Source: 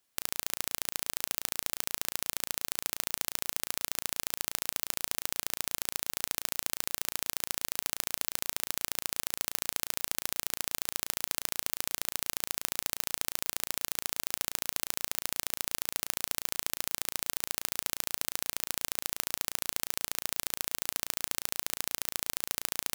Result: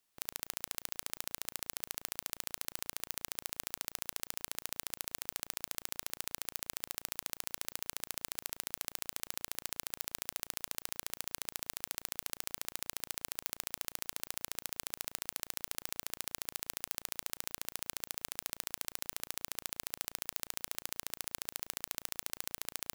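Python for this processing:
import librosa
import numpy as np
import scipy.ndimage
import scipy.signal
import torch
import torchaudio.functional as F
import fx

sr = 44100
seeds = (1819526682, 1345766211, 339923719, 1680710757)

y = fx.low_shelf(x, sr, hz=300.0, db=-11.0)
y = (np.kron(y[::2], np.eye(2)[0]) * 2)[:len(y)]
y = F.gain(torch.from_numpy(y), -6.0).numpy()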